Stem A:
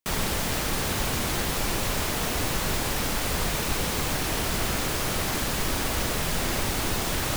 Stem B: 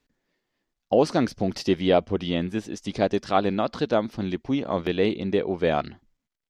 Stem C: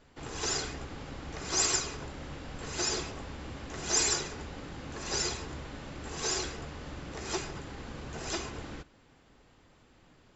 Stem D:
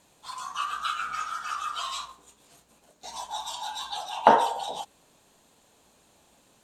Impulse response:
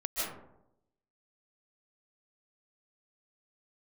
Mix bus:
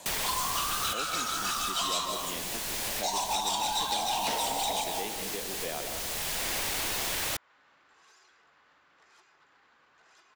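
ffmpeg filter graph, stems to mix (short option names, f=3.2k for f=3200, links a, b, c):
-filter_complex "[0:a]volume=-5dB[a];[1:a]highpass=f=130:w=0.5412,highpass=f=130:w=1.3066,volume=-16.5dB,asplit=3[b][c][d];[c]volume=-9dB[e];[2:a]acompressor=threshold=-40dB:ratio=8,bandpass=f=1.3k:t=q:w=2.2:csg=0,aeval=exprs='0.01*(cos(1*acos(clip(val(0)/0.01,-1,1)))-cos(1*PI/2))+0.00158*(cos(5*acos(clip(val(0)/0.01,-1,1)))-cos(5*PI/2))':c=same,adelay=1850,volume=-13.5dB[f];[3:a]equalizer=f=720:w=0.81:g=11,acrossover=split=290|3000[g][h][i];[h]acompressor=threshold=-26dB:ratio=6[j];[g][j][i]amix=inputs=3:normalize=0,volume=26.5dB,asoftclip=hard,volume=-26.5dB,volume=3dB,asplit=2[k][l];[l]volume=-11dB[m];[d]apad=whole_len=324856[n];[a][n]sidechaincompress=threshold=-44dB:ratio=8:attack=16:release=912[o];[4:a]atrim=start_sample=2205[p];[e][m]amix=inputs=2:normalize=0[q];[q][p]afir=irnorm=-1:irlink=0[r];[o][b][f][k][r]amix=inputs=5:normalize=0,highshelf=f=2.2k:g=10.5,acrossover=split=410|3200[s][t][u];[s]acompressor=threshold=-44dB:ratio=4[v];[t]acompressor=threshold=-31dB:ratio=4[w];[u]acompressor=threshold=-32dB:ratio=4[x];[v][w][x]amix=inputs=3:normalize=0,equalizer=f=1.3k:t=o:w=0.39:g=-4"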